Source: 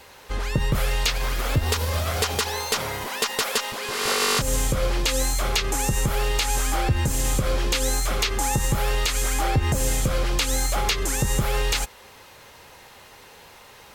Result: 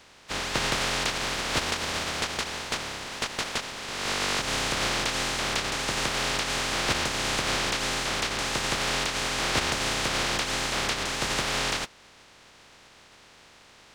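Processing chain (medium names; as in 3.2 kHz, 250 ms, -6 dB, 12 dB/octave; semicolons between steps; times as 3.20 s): spectral contrast reduction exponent 0.13; distance through air 110 m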